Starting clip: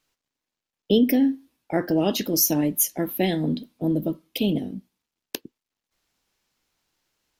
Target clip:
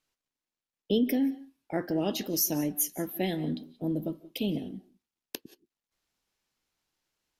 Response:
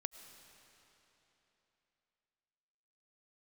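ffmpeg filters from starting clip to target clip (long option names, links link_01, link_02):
-filter_complex "[1:a]atrim=start_sample=2205,afade=type=out:start_time=0.16:duration=0.01,atrim=end_sample=7497,asetrate=26019,aresample=44100[link_01];[0:a][link_01]afir=irnorm=-1:irlink=0,volume=-7dB"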